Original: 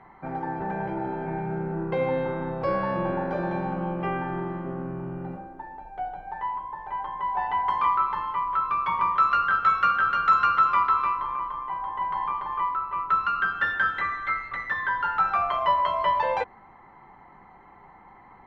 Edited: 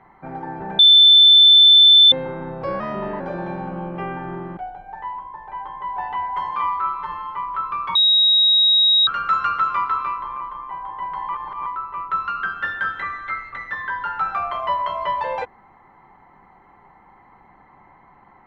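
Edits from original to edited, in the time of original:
0.79–2.12 s: bleep 3.53 kHz -6.5 dBFS
2.80–3.25 s: speed 112%
4.62–5.96 s: delete
7.54–8.34 s: stretch 1.5×
8.94–10.06 s: bleep 3.8 kHz -11.5 dBFS
12.28–12.65 s: reverse

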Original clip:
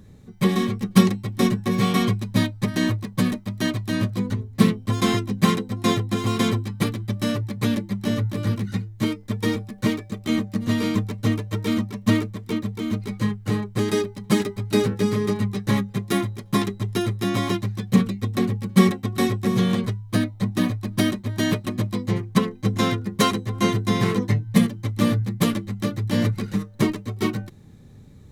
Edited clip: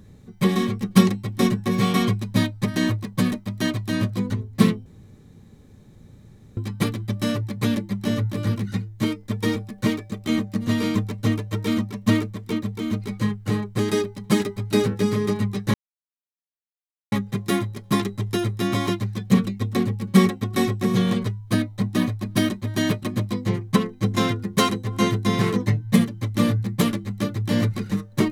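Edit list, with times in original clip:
4.86–6.57 s: room tone
15.74 s: insert silence 1.38 s

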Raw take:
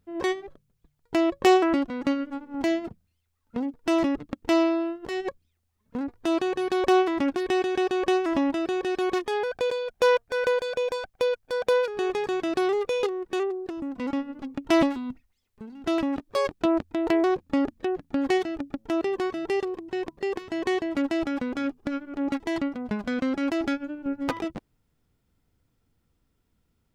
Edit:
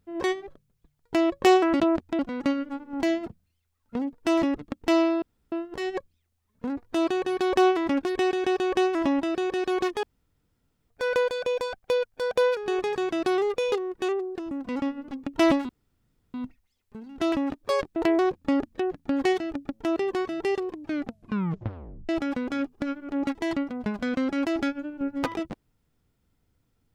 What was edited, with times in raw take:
4.83 s: insert room tone 0.30 s
9.34–10.21 s: room tone
15.00 s: insert room tone 0.65 s
16.62–17.01 s: move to 1.80 s
19.74 s: tape stop 1.40 s

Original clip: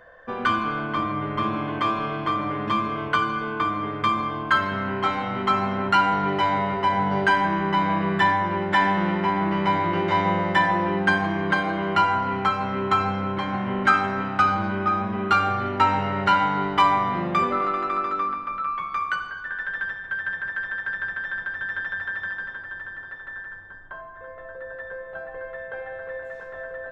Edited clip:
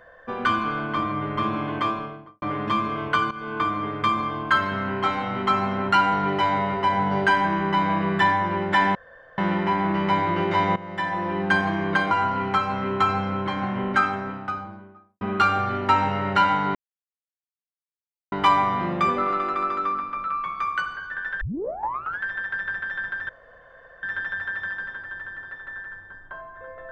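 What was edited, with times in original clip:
1.75–2.42 s: studio fade out
3.31–3.58 s: fade in, from -13 dB
8.95 s: insert room tone 0.43 s
10.33–11.16 s: fade in, from -16.5 dB
11.68–12.02 s: delete
13.53–15.12 s: studio fade out
16.66 s: insert silence 1.57 s
19.75 s: tape start 0.81 s
21.63 s: insert room tone 0.74 s

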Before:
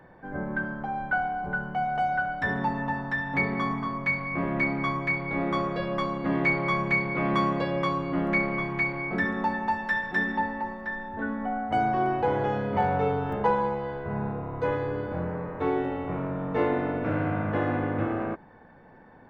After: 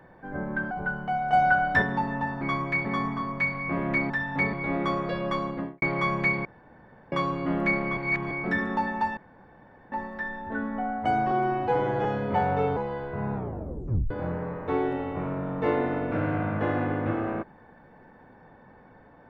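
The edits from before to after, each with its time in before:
0.71–1.38 s: delete
2.00–2.49 s: gain +6 dB
3.08–3.51 s: swap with 4.76–5.20 s
6.11–6.49 s: studio fade out
7.12–7.79 s: room tone
8.64–8.98 s: reverse
9.84–10.59 s: room tone
11.98–12.47 s: stretch 1.5×
13.19–13.69 s: delete
14.27 s: tape stop 0.76 s

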